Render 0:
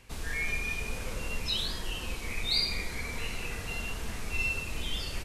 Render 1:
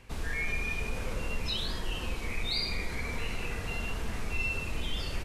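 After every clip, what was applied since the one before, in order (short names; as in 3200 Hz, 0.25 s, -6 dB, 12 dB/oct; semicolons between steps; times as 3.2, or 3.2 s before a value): high shelf 3400 Hz -8 dB; in parallel at 0 dB: limiter -28 dBFS, peak gain reduction 8 dB; on the sum: gain -3 dB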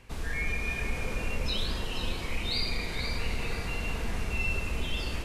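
echo with dull and thin repeats by turns 0.243 s, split 930 Hz, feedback 57%, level -3 dB; Schroeder reverb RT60 3.6 s, combs from 33 ms, DRR 9 dB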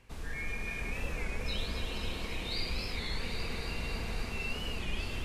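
echo with dull and thin repeats by turns 0.138 s, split 1700 Hz, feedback 89%, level -5 dB; record warp 33 1/3 rpm, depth 160 cents; gain -6.5 dB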